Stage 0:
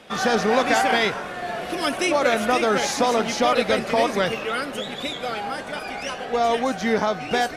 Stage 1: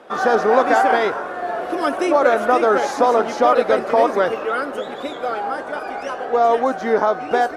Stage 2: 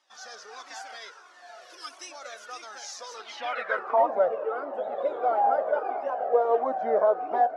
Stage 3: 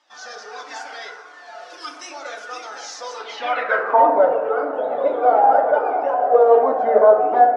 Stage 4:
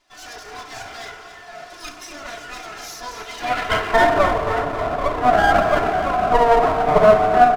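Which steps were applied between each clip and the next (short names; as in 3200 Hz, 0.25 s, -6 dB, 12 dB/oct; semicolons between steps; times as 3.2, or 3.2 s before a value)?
band shelf 660 Hz +13 dB 2.9 oct; gain -7.5 dB
AGC gain up to 9 dB; band-pass sweep 5700 Hz -> 630 Hz, 3.1–4.09; cascading flanger falling 1.5 Hz
air absorption 60 m; FDN reverb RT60 0.93 s, low-frequency decay 1.25×, high-frequency decay 0.4×, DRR 2 dB; gain +7 dB
minimum comb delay 2.9 ms; feedback echo 0.269 s, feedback 53%, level -11 dB; gain +1 dB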